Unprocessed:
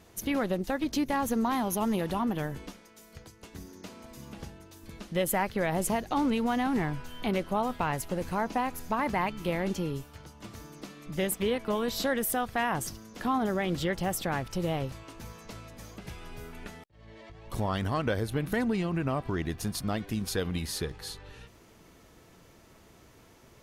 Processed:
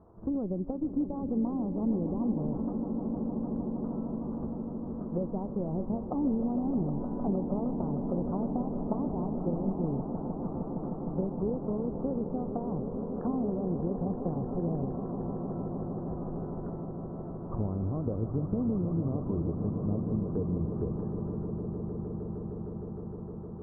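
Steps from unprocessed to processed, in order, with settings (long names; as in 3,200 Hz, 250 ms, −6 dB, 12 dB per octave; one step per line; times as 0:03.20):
treble cut that deepens with the level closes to 370 Hz, closed at −26.5 dBFS
Butterworth low-pass 1,200 Hz 48 dB per octave
echo that builds up and dies away 154 ms, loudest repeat 8, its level −12 dB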